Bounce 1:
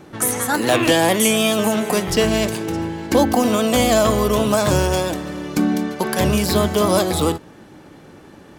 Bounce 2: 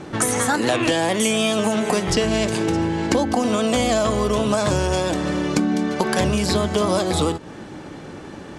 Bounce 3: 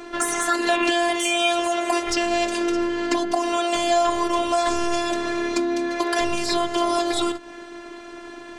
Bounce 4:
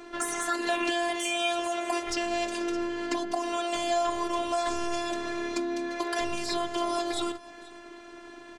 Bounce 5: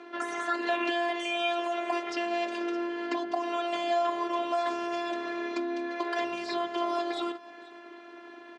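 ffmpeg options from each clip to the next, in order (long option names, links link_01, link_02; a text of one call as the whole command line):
ffmpeg -i in.wav -af "lowpass=frequency=9300:width=0.5412,lowpass=frequency=9300:width=1.3066,acompressor=threshold=-24dB:ratio=6,volume=7dB" out.wav
ffmpeg -i in.wav -filter_complex "[0:a]equalizer=frequency=74:width_type=o:width=0.43:gain=8.5,afftfilt=real='hypot(re,im)*cos(PI*b)':imag='0':win_size=512:overlap=0.75,asplit=2[link_01][link_02];[link_02]highpass=frequency=720:poles=1,volume=10dB,asoftclip=type=tanh:threshold=-2dB[link_03];[link_01][link_03]amix=inputs=2:normalize=0,lowpass=frequency=4600:poles=1,volume=-6dB" out.wav
ffmpeg -i in.wav -af "aecho=1:1:483:0.0841,volume=-7.5dB" out.wav
ffmpeg -i in.wav -af "highpass=270,lowpass=3300" out.wav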